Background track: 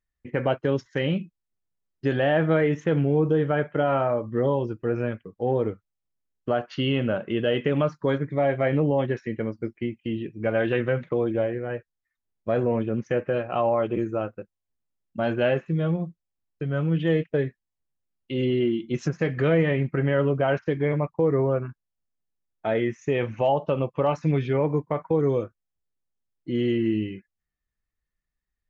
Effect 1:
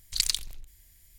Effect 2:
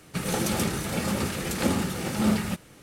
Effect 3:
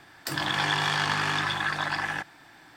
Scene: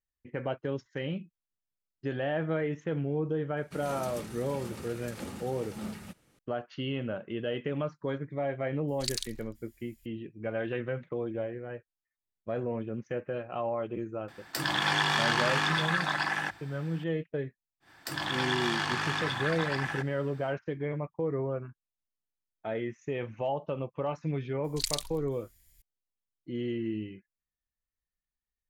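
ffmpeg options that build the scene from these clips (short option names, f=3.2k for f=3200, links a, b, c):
-filter_complex "[1:a]asplit=2[a][b];[3:a]asplit=2[c][d];[0:a]volume=-9.5dB[e];[c]bandreject=f=50:t=h:w=6,bandreject=f=100:t=h:w=6[f];[2:a]atrim=end=2.82,asetpts=PTS-STARTPTS,volume=-15.5dB,afade=t=in:d=0.004:c=hsin,afade=t=out:st=2.816:d=0.004:c=hsin,adelay=157437S[g];[a]atrim=end=1.18,asetpts=PTS-STARTPTS,volume=-8dB,afade=t=in:d=0.004:c=hsin,afade=t=out:st=1.176:d=0.004:c=hsin,adelay=8880[h];[f]atrim=end=2.76,asetpts=PTS-STARTPTS,volume=-1dB,afade=t=in:d=0.004:c=hsin,afade=t=out:st=2.756:d=0.004:c=hsin,adelay=629748S[i];[d]atrim=end=2.76,asetpts=PTS-STARTPTS,volume=-5dB,afade=t=in:d=0.1,afade=t=out:st=2.66:d=0.1,adelay=784980S[j];[b]atrim=end=1.18,asetpts=PTS-STARTPTS,volume=-6dB,afade=t=in:d=0.004:c=hsin,afade=t=out:st=1.176:d=0.004:c=hsin,adelay=24640[k];[e][g][h][i][j][k]amix=inputs=6:normalize=0"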